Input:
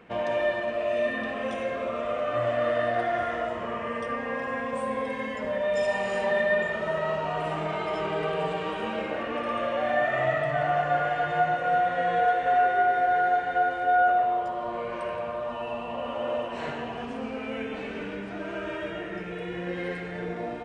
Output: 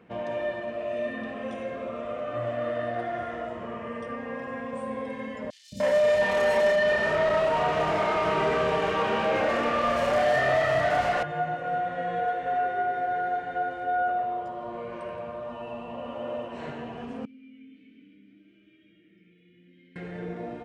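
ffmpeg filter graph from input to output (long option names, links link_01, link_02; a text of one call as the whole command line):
ffmpeg -i in.wav -filter_complex "[0:a]asettb=1/sr,asplit=3[link_01][link_02][link_03];[link_01]atrim=end=5.504[link_04];[link_02]atrim=start=5.5:end=11.23,asetpts=PTS-STARTPTS,afade=type=in:duration=0.004:curve=qsin,afade=type=out:start_time=5.726:duration=0.004:curve=qsin,asplit=2[link_05][link_06];[link_06]highpass=frequency=720:poles=1,volume=24dB,asoftclip=type=tanh:threshold=-14dB[link_07];[link_05][link_07]amix=inputs=2:normalize=0,lowpass=frequency=3300:poles=1,volume=-6dB,asplit=2[link_08][link_09];[link_09]adelay=30,volume=-3.5dB[link_10];[link_08][link_10]amix=inputs=2:normalize=0,atrim=end_sample=252693,acrossover=split=260|4400[link_11][link_12][link_13];[link_11]adelay=220[link_14];[link_12]adelay=300[link_15];[link_14][link_15][link_13]amix=inputs=3:normalize=0,atrim=end_sample=252693[link_16];[link_03]atrim=start=11.226[link_17];[link_04][link_16]acrossfade=duration=0.004:curve1=hsin:curve2=qsin[link_18];[link_18][link_17]acrossfade=duration=0.004:curve1=qsin:curve2=hsin,asettb=1/sr,asplit=3[link_19][link_20][link_21];[link_19]atrim=end=17.254[link_22];[link_20]atrim=start=17.25:end=19.96,asetpts=PTS-STARTPTS,afade=type=in:duration=0.004:curve=qsin,afade=type=out:start_time=2.706:duration=0.004:curve=qsin,acrossover=split=170|3000[link_23][link_24][link_25];[link_24]acompressor=threshold=-45dB:ratio=4:attack=3.2:release=140:knee=2.83:detection=peak[link_26];[link_23][link_26][link_25]amix=inputs=3:normalize=0,asplit=3[link_27][link_28][link_29];[link_27]bandpass=frequency=270:width_type=q:width=8,volume=0dB[link_30];[link_28]bandpass=frequency=2290:width_type=q:width=8,volume=-6dB[link_31];[link_29]bandpass=frequency=3010:width_type=q:width=8,volume=-9dB[link_32];[link_30][link_31][link_32]amix=inputs=3:normalize=0[link_33];[link_21]atrim=start=19.956[link_34];[link_22][link_33]acrossfade=duration=0.004:curve1=hsin:curve2=qsin[link_35];[link_35][link_34]acrossfade=duration=0.004:curve1=qsin:curve2=hsin,highpass=frequency=120:poles=1,lowshelf=frequency=370:gain=10.5,volume=-7dB" out.wav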